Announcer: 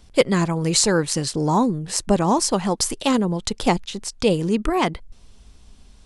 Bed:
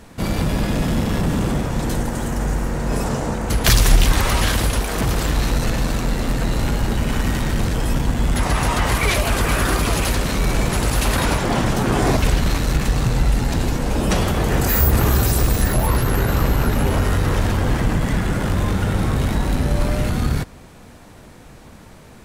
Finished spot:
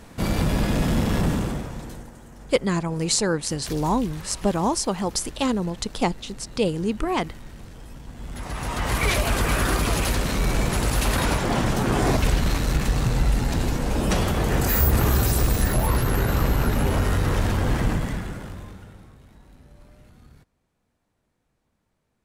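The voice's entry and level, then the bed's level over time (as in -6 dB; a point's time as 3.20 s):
2.35 s, -4.0 dB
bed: 1.27 s -2 dB
2.21 s -22 dB
8.01 s -22 dB
9.02 s -3.5 dB
17.90 s -3.5 dB
19.19 s -31 dB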